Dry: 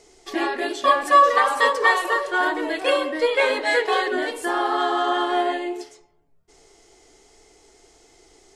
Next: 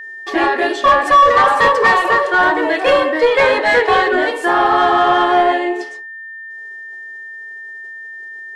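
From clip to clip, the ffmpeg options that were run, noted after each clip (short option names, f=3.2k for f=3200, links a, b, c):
-filter_complex "[0:a]asplit=2[a][b];[b]highpass=f=720:p=1,volume=18dB,asoftclip=type=tanh:threshold=-3dB[c];[a][c]amix=inputs=2:normalize=0,lowpass=f=1.3k:p=1,volume=-6dB,agate=range=-33dB:threshold=-39dB:ratio=3:detection=peak,aeval=exprs='val(0)+0.0251*sin(2*PI*1800*n/s)':c=same,volume=3dB"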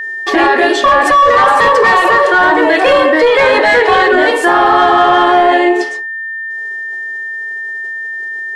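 -af "alimiter=level_in=11dB:limit=-1dB:release=50:level=0:latency=1,volume=-1dB"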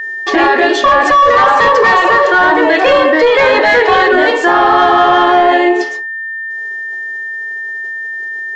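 -af "aresample=16000,aresample=44100"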